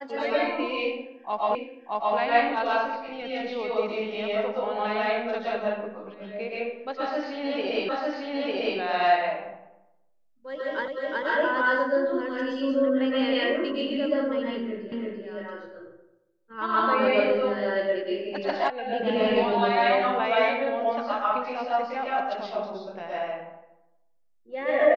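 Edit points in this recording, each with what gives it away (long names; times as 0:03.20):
0:01.55: the same again, the last 0.62 s
0:07.89: the same again, the last 0.9 s
0:10.88: the same again, the last 0.37 s
0:14.92: the same again, the last 0.34 s
0:18.70: cut off before it has died away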